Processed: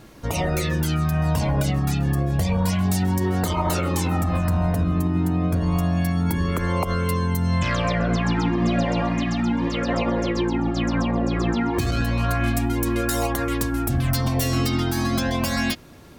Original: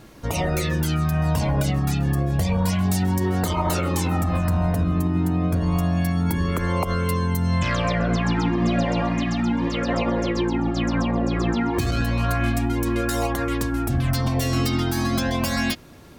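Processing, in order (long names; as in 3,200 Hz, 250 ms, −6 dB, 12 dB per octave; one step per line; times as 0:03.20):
0:12.47–0:14.53: high-shelf EQ 8,600 Hz +7.5 dB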